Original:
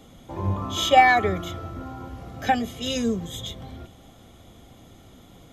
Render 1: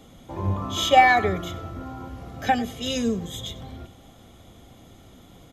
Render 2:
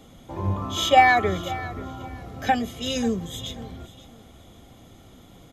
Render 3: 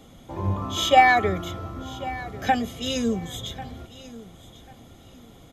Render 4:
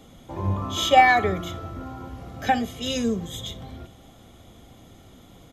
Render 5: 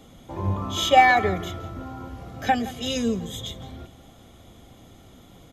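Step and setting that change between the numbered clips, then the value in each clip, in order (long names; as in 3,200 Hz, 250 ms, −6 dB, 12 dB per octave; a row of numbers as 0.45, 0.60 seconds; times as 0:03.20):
repeating echo, delay time: 96, 536, 1,093, 62, 168 milliseconds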